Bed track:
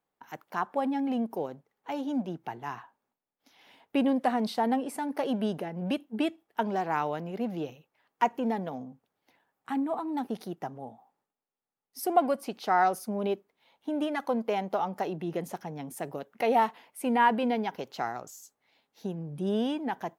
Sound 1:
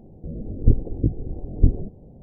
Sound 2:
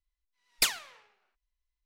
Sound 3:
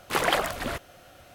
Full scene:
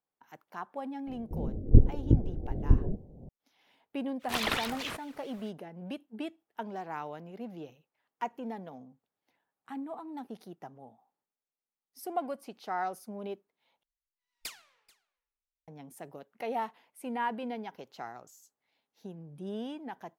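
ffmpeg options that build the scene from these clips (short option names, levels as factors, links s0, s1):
-filter_complex "[0:a]volume=0.335[s0];[1:a]tremolo=f=2.7:d=0.5[s1];[3:a]aeval=exprs='val(0)*sin(2*PI*1800*n/s+1800*0.7/4.6*sin(2*PI*4.6*n/s))':c=same[s2];[2:a]aecho=1:1:435:0.0708[s3];[s0]asplit=2[s4][s5];[s4]atrim=end=13.834[s6];[s3]atrim=end=1.85,asetpts=PTS-STARTPTS,volume=0.158[s7];[s5]atrim=start=15.676[s8];[s1]atrim=end=2.22,asetpts=PTS-STARTPTS,volume=0.944,afade=t=in:d=0.004:c=hsin,afade=t=out:st=2.216:d=0.004:c=hsin,adelay=1070[s9];[s2]atrim=end=1.34,asetpts=PTS-STARTPTS,volume=0.631,afade=t=in:d=0.05,afade=t=out:st=1.29:d=0.05,adelay=4190[s10];[s6][s7]acrossfade=d=0.004:c1=hsin:c2=hsin[s11];[s11][s8]acrossfade=d=0.004:c1=hsin:c2=hsin[s12];[s12][s9][s10]amix=inputs=3:normalize=0"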